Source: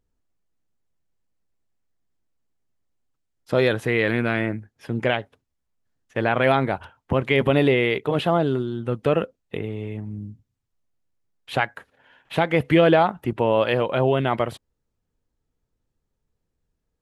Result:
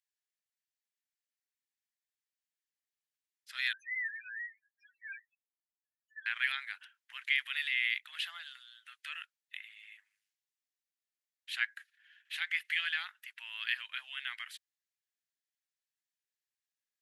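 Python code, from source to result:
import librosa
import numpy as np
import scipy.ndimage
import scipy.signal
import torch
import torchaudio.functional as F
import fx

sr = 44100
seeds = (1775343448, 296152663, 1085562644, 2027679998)

y = scipy.signal.sosfilt(scipy.signal.ellip(4, 1.0, 80, 1700.0, 'highpass', fs=sr, output='sos'), x)
y = fx.spec_topn(y, sr, count=2, at=(3.73, 6.26))
y = y * 10.0 ** (-4.5 / 20.0)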